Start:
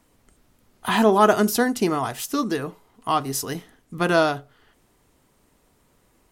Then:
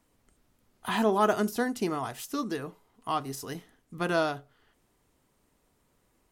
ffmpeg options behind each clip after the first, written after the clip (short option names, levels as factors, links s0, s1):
-af "deesser=0.45,volume=0.398"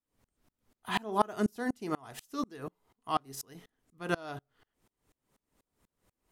-af "aeval=exprs='val(0)*pow(10,-32*if(lt(mod(-4.1*n/s,1),2*abs(-4.1)/1000),1-mod(-4.1*n/s,1)/(2*abs(-4.1)/1000),(mod(-4.1*n/s,1)-2*abs(-4.1)/1000)/(1-2*abs(-4.1)/1000))/20)':c=same,volume=1.41"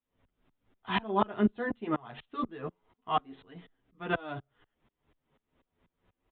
-filter_complex "[0:a]aresample=8000,aresample=44100,asplit=2[s0][s1];[s1]adelay=8.9,afreqshift=0.34[s2];[s0][s2]amix=inputs=2:normalize=1,volume=1.78"